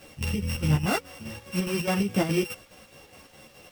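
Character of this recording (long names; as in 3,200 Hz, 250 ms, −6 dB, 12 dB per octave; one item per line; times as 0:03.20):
a buzz of ramps at a fixed pitch in blocks of 16 samples
chopped level 4.8 Hz, depth 60%, duty 65%
a quantiser's noise floor 10 bits, dither none
a shimmering, thickened sound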